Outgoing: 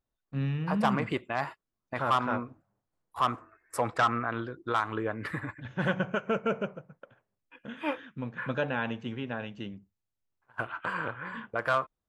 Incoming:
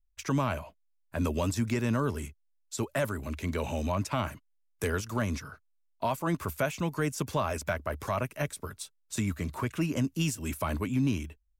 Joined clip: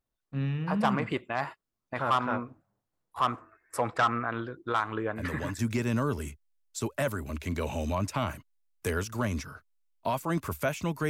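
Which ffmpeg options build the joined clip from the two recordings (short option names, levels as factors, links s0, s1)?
-filter_complex "[1:a]asplit=2[s0][s1];[0:a]apad=whole_dur=11.09,atrim=end=11.09,atrim=end=5.592[s2];[s1]atrim=start=1.558:end=7.06[s3];[s0]atrim=start=0.67:end=1.56,asetpts=PTS-STARTPTS,volume=0.447,afade=t=in:d=0.004:c=hsin,afade=t=out:st=0.886:d=0.004:c=hsin,adelay=4700[s4];[s2][s3]acrossfade=d=0.004:c1=hsin:c2=hsin[s5];[s5][s4]amix=inputs=2:normalize=0"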